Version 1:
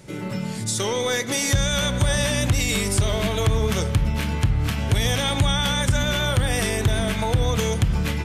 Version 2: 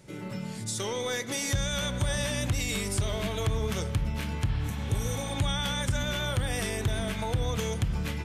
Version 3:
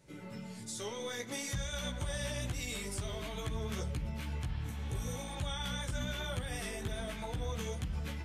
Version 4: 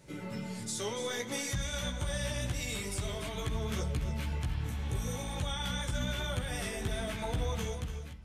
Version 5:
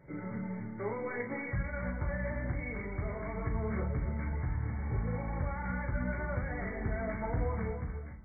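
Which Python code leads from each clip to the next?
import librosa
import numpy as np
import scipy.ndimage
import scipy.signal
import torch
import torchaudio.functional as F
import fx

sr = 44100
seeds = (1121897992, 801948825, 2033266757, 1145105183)

y1 = fx.spec_repair(x, sr, seeds[0], start_s=4.51, length_s=0.8, low_hz=610.0, high_hz=5600.0, source='both')
y1 = y1 * librosa.db_to_amplitude(-8.0)
y2 = fx.chorus_voices(y1, sr, voices=4, hz=1.0, base_ms=15, depth_ms=3.0, mix_pct=45)
y2 = y2 * librosa.db_to_amplitude(-5.5)
y3 = fx.fade_out_tail(y2, sr, length_s=0.86)
y3 = fx.rider(y3, sr, range_db=4, speed_s=2.0)
y3 = y3 + 10.0 ** (-11.0 / 20.0) * np.pad(y3, (int(290 * sr / 1000.0), 0))[:len(y3)]
y3 = y3 * librosa.db_to_amplitude(3.0)
y4 = fx.brickwall_lowpass(y3, sr, high_hz=2300.0)
y4 = fx.doubler(y4, sr, ms=37.0, db=-7.0)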